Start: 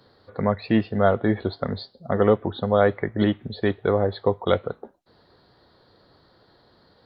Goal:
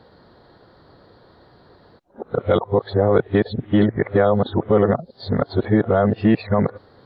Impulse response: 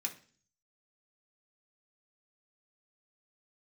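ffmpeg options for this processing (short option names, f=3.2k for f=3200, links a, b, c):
-af "areverse,highshelf=f=3.3k:g=-11.5,alimiter=limit=-13.5dB:level=0:latency=1:release=61,volume=8dB"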